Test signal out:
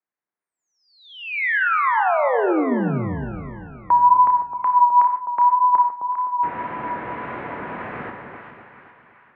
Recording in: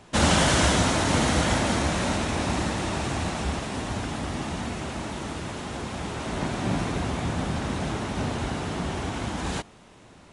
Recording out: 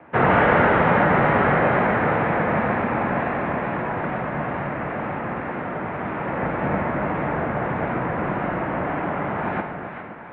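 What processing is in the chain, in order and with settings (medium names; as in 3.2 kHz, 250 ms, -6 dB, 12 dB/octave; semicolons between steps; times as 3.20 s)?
bass shelf 340 Hz -4 dB; two-band feedback delay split 1.1 kHz, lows 258 ms, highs 400 ms, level -6.5 dB; mistuned SSB -96 Hz 230–2200 Hz; wow and flutter 29 cents; gated-style reverb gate 170 ms flat, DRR 6 dB; trim +7 dB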